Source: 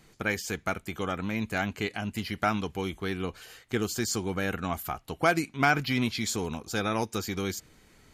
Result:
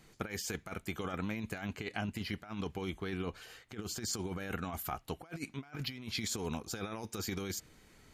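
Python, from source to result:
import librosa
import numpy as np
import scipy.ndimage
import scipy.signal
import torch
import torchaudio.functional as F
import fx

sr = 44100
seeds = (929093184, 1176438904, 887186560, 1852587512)

y = fx.high_shelf(x, sr, hz=6800.0, db=-6.5, at=(1.74, 4.11), fade=0.02)
y = fx.over_compress(y, sr, threshold_db=-32.0, ratio=-0.5)
y = F.gain(torch.from_numpy(y), -6.0).numpy()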